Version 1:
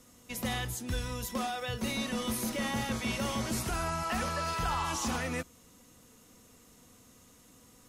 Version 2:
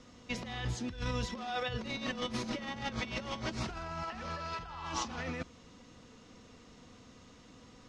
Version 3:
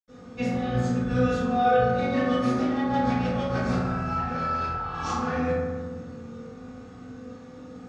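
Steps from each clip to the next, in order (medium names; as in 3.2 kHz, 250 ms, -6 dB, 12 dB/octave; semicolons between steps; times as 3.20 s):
low-pass 5.3 kHz 24 dB/octave; compressor with a negative ratio -37 dBFS, ratio -0.5
reverberation RT60 1.5 s, pre-delay 77 ms; trim +5 dB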